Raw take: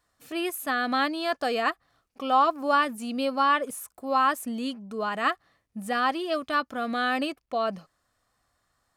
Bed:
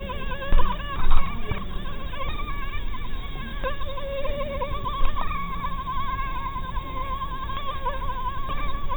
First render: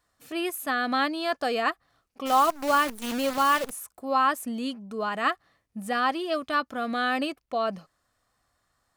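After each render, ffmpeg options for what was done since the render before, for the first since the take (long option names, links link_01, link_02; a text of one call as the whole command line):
ffmpeg -i in.wav -filter_complex "[0:a]asplit=3[link_01][link_02][link_03];[link_01]afade=type=out:start_time=2.25:duration=0.02[link_04];[link_02]acrusher=bits=6:dc=4:mix=0:aa=0.000001,afade=type=in:start_time=2.25:duration=0.02,afade=type=out:start_time=3.7:duration=0.02[link_05];[link_03]afade=type=in:start_time=3.7:duration=0.02[link_06];[link_04][link_05][link_06]amix=inputs=3:normalize=0" out.wav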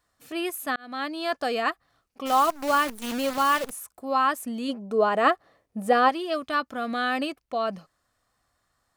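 ffmpeg -i in.wav -filter_complex "[0:a]asplit=3[link_01][link_02][link_03];[link_01]afade=type=out:start_time=4.68:duration=0.02[link_04];[link_02]equalizer=frequency=510:width_type=o:width=1.7:gain=12,afade=type=in:start_time=4.68:duration=0.02,afade=type=out:start_time=6.08:duration=0.02[link_05];[link_03]afade=type=in:start_time=6.08:duration=0.02[link_06];[link_04][link_05][link_06]amix=inputs=3:normalize=0,asplit=2[link_07][link_08];[link_07]atrim=end=0.76,asetpts=PTS-STARTPTS,afade=type=out:start_time=0.756:duration=0.004:curve=hsin[link_09];[link_08]atrim=start=0.76,asetpts=PTS-STARTPTS,afade=type=in:duration=0.5[link_10];[link_09][link_10]concat=n=2:v=0:a=1" out.wav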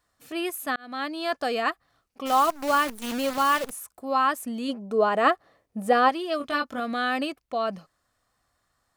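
ffmpeg -i in.wav -filter_complex "[0:a]asettb=1/sr,asplit=3[link_01][link_02][link_03];[link_01]atrim=end=6.384[link_04];[link_02]atrim=start=6.38:end=6.8,asetpts=PTS-STARTPTS,afade=type=in:duration=0.004:curve=qsin,afade=type=out:start_time=0.416:duration=0.004:curve=qsin,asplit=2[link_05][link_06];[link_06]adelay=21,volume=-3.5dB[link_07];[link_05][link_07]amix=inputs=2:normalize=0,atrim=end_sample=18522[link_08];[link_03]atrim=start=6.796[link_09];[link_04][link_08]acrossfade=duration=0.004:curve1=hsin:curve2=qsin[link_10];[link_10][link_09]acrossfade=duration=0.004:curve1=qsin:curve2=hsin" out.wav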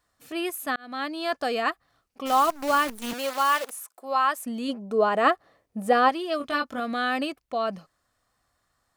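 ffmpeg -i in.wav -filter_complex "[0:a]asettb=1/sr,asplit=3[link_01][link_02][link_03];[link_01]atrim=end=3.134[link_04];[link_02]atrim=start=3.13:end=4.46,asetpts=PTS-STARTPTS,afade=type=in:duration=0.004:curve=qsin,afade=type=out:start_time=1.326:duration=0.004:curve=qsin,highpass=460[link_05];[link_03]atrim=start=4.456[link_06];[link_04][link_05]acrossfade=duration=0.004:curve1=hsin:curve2=qsin[link_07];[link_07][link_06]acrossfade=duration=0.004:curve1=qsin:curve2=hsin" out.wav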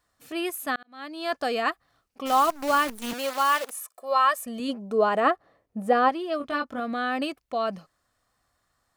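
ffmpeg -i in.wav -filter_complex "[0:a]asettb=1/sr,asplit=3[link_01][link_02][link_03];[link_01]atrim=end=3.744[link_04];[link_02]atrim=start=3.74:end=4.6,asetpts=PTS-STARTPTS,afade=type=in:duration=0.004:curve=qsin,afade=type=out:start_time=0.856:duration=0.004:curve=qsin,aecho=1:1:1.7:0.65,atrim=end_sample=37926[link_05];[link_03]atrim=start=4.596[link_06];[link_04][link_05]acrossfade=duration=0.004:curve1=hsin:curve2=qsin[link_07];[link_07][link_06]acrossfade=duration=0.004:curve1=qsin:curve2=hsin,asettb=1/sr,asplit=3[link_08][link_09][link_10];[link_08]atrim=end=5.204[link_11];[link_09]atrim=start=5.2:end=7.22,asetpts=PTS-STARTPTS,afade=type=in:duration=0.004:curve=qsin,afade=type=out:start_time=2.016:duration=0.004:curve=qsin,highshelf=frequency=2400:gain=-8[link_12];[link_10]atrim=start=7.216[link_13];[link_11][link_12]acrossfade=duration=0.004:curve1=hsin:curve2=qsin[link_14];[link_14][link_13]acrossfade=duration=0.004:curve1=qsin:curve2=hsin,asplit=2[link_15][link_16];[link_15]atrim=end=0.83,asetpts=PTS-STARTPTS,afade=type=out:start_time=0.826:duration=0.004:curve=hsin[link_17];[link_16]atrim=start=0.83,asetpts=PTS-STARTPTS,afade=type=in:duration=0.51[link_18];[link_17][link_18]concat=n=2:v=0:a=1" out.wav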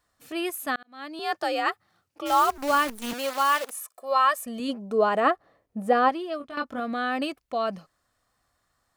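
ffmpeg -i in.wav -filter_complex "[0:a]asettb=1/sr,asplit=3[link_01][link_02][link_03];[link_01]atrim=end=1.194[link_04];[link_02]atrim=start=1.19:end=2.58,asetpts=PTS-STARTPTS,afade=type=in:duration=0.004:curve=qsin,afade=type=out:start_time=1.386:duration=0.004:curve=qsin,afreqshift=57[link_05];[link_03]atrim=start=2.576[link_06];[link_04][link_05]acrossfade=duration=0.004:curve1=hsin:curve2=qsin[link_07];[link_07][link_06]acrossfade=duration=0.004:curve1=qsin:curve2=hsin,asplit=2[link_08][link_09];[link_08]atrim=end=6.57,asetpts=PTS-STARTPTS,afade=type=out:start_time=6.15:duration=0.42:silence=0.266073[link_10];[link_09]atrim=start=6.57,asetpts=PTS-STARTPTS,afade=type=in:duration=0.004:curve=hsin:silence=0.266073[link_11];[link_10][link_11]concat=n=2:v=0:a=1" out.wav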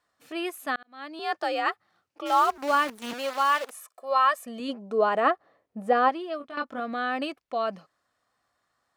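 ffmpeg -i in.wav -af "highpass=frequency=280:poles=1,highshelf=frequency=7100:gain=-11.5" out.wav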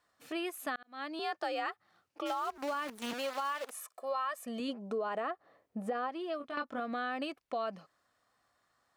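ffmpeg -i in.wav -af "alimiter=limit=-18dB:level=0:latency=1:release=81,acompressor=threshold=-35dB:ratio=3" out.wav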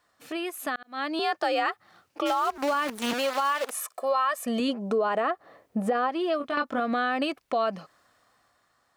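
ffmpeg -i in.wav -filter_complex "[0:a]asplit=2[link_01][link_02];[link_02]alimiter=level_in=9dB:limit=-24dB:level=0:latency=1:release=223,volume=-9dB,volume=0.5dB[link_03];[link_01][link_03]amix=inputs=2:normalize=0,dynaudnorm=framelen=120:gausssize=13:maxgain=6dB" out.wav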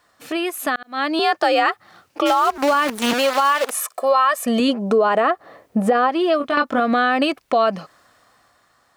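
ffmpeg -i in.wav -af "volume=9dB" out.wav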